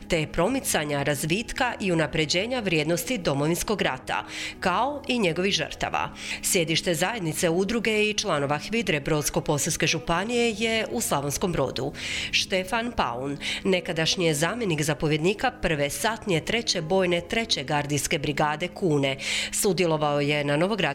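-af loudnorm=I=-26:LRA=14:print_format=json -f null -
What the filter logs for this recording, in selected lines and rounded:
"input_i" : "-24.8",
"input_tp" : "-9.8",
"input_lra" : "1.2",
"input_thresh" : "-34.8",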